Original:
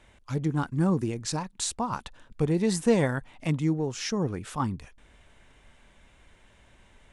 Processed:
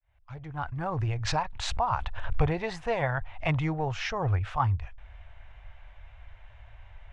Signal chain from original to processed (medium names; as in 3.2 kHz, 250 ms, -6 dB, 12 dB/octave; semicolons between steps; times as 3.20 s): fade-in on the opening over 2.35 s; FFT filter 100 Hz 0 dB, 200 Hz -26 dB, 450 Hz -7 dB, 700 Hz +9 dB, 1 kHz +5 dB, 2.6 kHz +5 dB, 6.3 kHz -7 dB, 9.2 kHz -19 dB; gain riding within 5 dB 0.5 s; tone controls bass +14 dB, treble -6 dB; 0.61–2.56 s: swell ahead of each attack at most 45 dB/s